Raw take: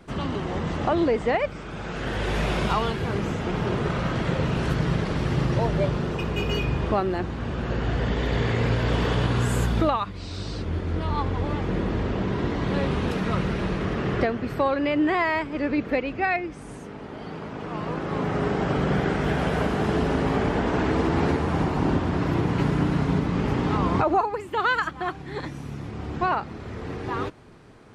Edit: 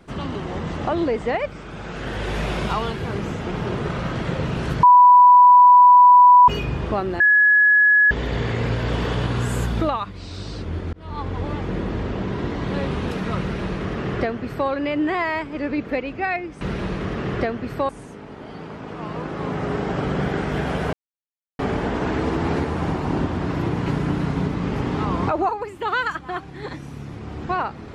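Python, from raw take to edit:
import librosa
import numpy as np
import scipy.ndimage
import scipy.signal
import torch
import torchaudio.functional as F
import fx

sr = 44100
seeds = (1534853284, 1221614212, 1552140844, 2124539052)

y = fx.edit(x, sr, fx.bleep(start_s=4.83, length_s=1.65, hz=987.0, db=-6.5),
    fx.bleep(start_s=7.2, length_s=0.91, hz=1690.0, db=-11.0),
    fx.fade_in_span(start_s=10.93, length_s=0.55, curve='qsin'),
    fx.duplicate(start_s=13.41, length_s=1.28, to_s=16.61),
    fx.silence(start_s=19.65, length_s=0.66), tone=tone)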